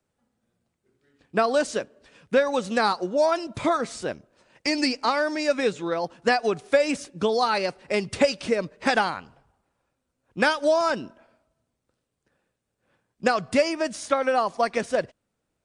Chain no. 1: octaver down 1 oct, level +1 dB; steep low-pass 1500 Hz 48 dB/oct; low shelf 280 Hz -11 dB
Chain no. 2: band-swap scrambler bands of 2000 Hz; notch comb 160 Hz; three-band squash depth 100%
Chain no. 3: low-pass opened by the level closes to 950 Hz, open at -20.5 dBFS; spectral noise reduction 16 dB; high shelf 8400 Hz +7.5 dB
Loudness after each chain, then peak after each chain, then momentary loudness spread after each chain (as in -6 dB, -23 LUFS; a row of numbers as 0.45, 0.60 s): -27.5, -23.0, -24.5 LUFS; -8.5, -8.0, -6.0 dBFS; 9, 16, 8 LU